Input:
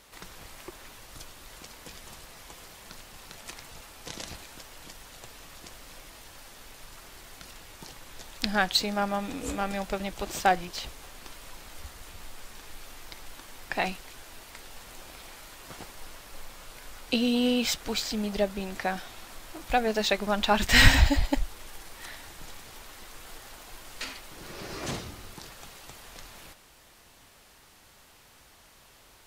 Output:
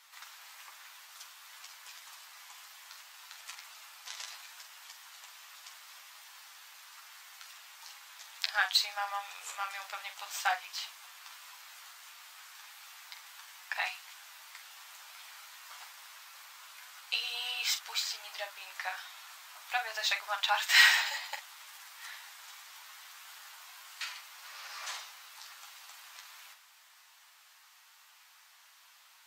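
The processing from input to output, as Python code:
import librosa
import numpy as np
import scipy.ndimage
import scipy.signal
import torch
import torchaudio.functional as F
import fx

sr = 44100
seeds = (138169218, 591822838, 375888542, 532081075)

p1 = scipy.signal.sosfilt(scipy.signal.cheby2(4, 60, 270.0, 'highpass', fs=sr, output='sos'), x)
p2 = fx.peak_eq(p1, sr, hz=9900.0, db=-5.5, octaves=0.37)
p3 = p2 + fx.room_early_taps(p2, sr, ms=(11, 46), db=(-5.0, -9.0), dry=0)
y = p3 * 10.0 ** (-3.5 / 20.0)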